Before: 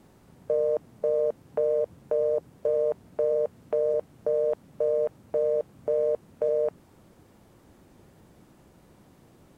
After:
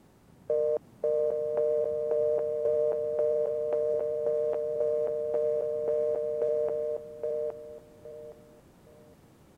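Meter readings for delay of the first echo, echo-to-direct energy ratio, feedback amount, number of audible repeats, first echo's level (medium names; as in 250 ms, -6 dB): 817 ms, -4.0 dB, 22%, 3, -4.0 dB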